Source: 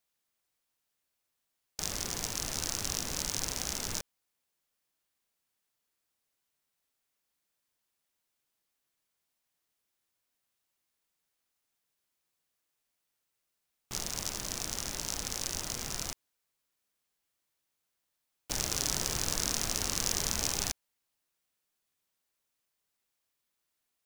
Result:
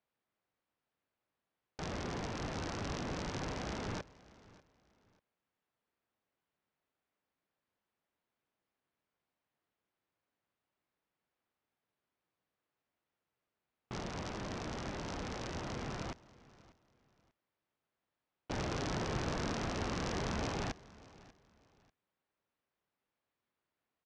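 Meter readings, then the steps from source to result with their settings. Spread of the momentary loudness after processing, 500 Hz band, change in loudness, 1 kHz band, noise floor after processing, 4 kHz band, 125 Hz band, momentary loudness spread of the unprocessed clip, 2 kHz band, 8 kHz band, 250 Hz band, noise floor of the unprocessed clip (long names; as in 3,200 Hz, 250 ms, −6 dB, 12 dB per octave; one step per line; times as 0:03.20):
9 LU, +3.5 dB, −7.0 dB, +2.0 dB, below −85 dBFS, −11.0 dB, +2.5 dB, 8 LU, −2.0 dB, −19.0 dB, +4.0 dB, −83 dBFS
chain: high-pass filter 90 Hz 6 dB per octave
head-to-tape spacing loss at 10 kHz 38 dB
repeating echo 591 ms, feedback 28%, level −21 dB
level +5.5 dB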